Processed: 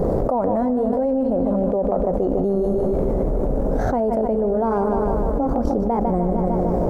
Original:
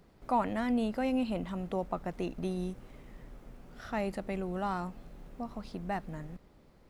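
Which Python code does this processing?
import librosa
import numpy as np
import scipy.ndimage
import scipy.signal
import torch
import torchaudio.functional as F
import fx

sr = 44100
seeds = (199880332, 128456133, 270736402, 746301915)

p1 = fx.pitch_glide(x, sr, semitones=3.0, runs='starting unshifted')
p2 = fx.curve_eq(p1, sr, hz=(220.0, 350.0, 520.0, 2700.0, 6900.0), db=(0, 2, 10, -29, -17))
p3 = fx.transient(p2, sr, attack_db=-2, sustain_db=-7)
p4 = p3 + fx.echo_feedback(p3, sr, ms=151, feedback_pct=59, wet_db=-12.0, dry=0)
p5 = fx.env_flatten(p4, sr, amount_pct=100)
y = p5 * 10.0 ** (5.5 / 20.0)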